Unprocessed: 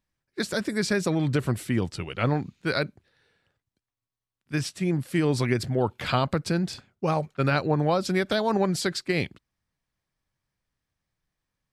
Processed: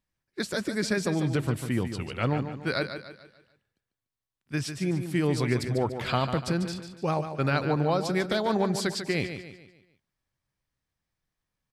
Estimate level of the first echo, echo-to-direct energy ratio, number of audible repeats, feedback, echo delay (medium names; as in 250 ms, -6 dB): -9.0 dB, -8.0 dB, 4, 42%, 146 ms